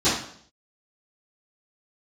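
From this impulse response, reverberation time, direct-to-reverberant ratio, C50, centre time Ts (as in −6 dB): 0.60 s, −15.0 dB, 3.0 dB, 46 ms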